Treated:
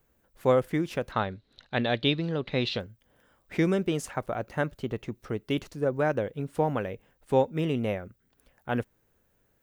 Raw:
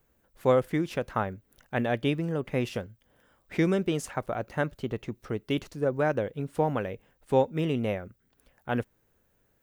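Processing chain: 1.12–2.8 synth low-pass 4000 Hz, resonance Q 12

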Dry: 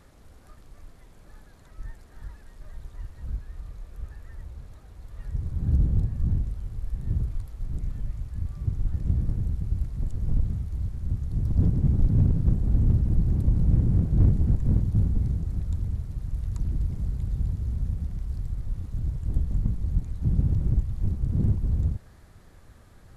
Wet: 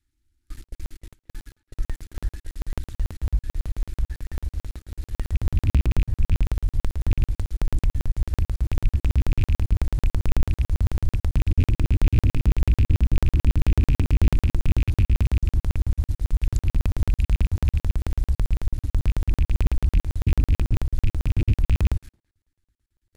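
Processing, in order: rattling part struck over -22 dBFS, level -32 dBFS; Chebyshev band-stop 350–870 Hz, order 5; gate with hold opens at -40 dBFS; fixed phaser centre 440 Hz, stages 4; in parallel at +2 dB: compressor, threshold -32 dBFS, peak gain reduction 15.5 dB; on the sum: sample leveller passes 2; speakerphone echo 0.22 s, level -23 dB; crackling interface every 0.11 s, samples 2048, zero, from 0.64

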